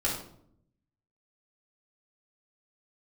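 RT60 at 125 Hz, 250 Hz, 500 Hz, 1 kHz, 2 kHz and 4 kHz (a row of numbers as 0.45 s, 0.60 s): 1.2 s, 1.0 s, 0.75 s, 0.60 s, 0.45 s, 0.40 s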